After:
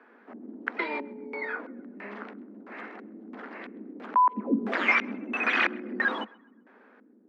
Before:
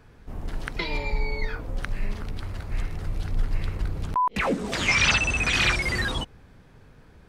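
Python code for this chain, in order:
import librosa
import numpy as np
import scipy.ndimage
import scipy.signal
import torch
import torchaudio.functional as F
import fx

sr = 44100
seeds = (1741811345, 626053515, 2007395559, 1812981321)

y = fx.filter_lfo_lowpass(x, sr, shape='square', hz=1.5, low_hz=270.0, high_hz=1700.0, q=1.6)
y = scipy.signal.sosfilt(scipy.signal.butter(16, 210.0, 'highpass', fs=sr, output='sos'), y)
y = fx.echo_banded(y, sr, ms=131, feedback_pct=41, hz=1400.0, wet_db=-23.0)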